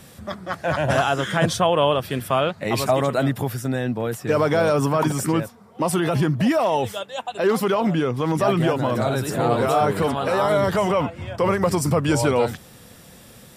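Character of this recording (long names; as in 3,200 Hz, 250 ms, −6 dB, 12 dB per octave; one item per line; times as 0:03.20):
background noise floor −47 dBFS
spectral slope −5.0 dB per octave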